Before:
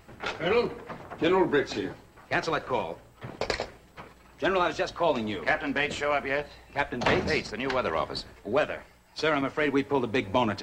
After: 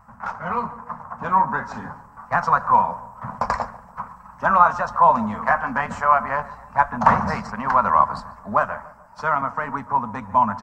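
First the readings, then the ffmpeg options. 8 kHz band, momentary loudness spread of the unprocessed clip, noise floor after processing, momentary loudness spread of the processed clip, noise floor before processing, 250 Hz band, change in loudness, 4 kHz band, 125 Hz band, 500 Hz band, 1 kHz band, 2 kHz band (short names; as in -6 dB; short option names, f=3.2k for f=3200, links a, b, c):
n/a, 12 LU, -47 dBFS, 17 LU, -56 dBFS, 0.0 dB, +7.5 dB, under -10 dB, +4.5 dB, -1.5 dB, +14.0 dB, +3.0 dB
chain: -filter_complex "[0:a]firequalizer=gain_entry='entry(130,0);entry(230,4);entry(330,-26);entry(490,-8);entry(1000,14);entry(2200,-12);entry(3500,-22);entry(5500,-8)':delay=0.05:min_phase=1,dynaudnorm=f=370:g=11:m=11.5dB,asplit=2[a][b];[b]adelay=144,lowpass=f=1.8k:p=1,volume=-17dB,asplit=2[c][d];[d]adelay=144,lowpass=f=1.8k:p=1,volume=0.47,asplit=2[e][f];[f]adelay=144,lowpass=f=1.8k:p=1,volume=0.47,asplit=2[g][h];[h]adelay=144,lowpass=f=1.8k:p=1,volume=0.47[i];[c][e][g][i]amix=inputs=4:normalize=0[j];[a][j]amix=inputs=2:normalize=0"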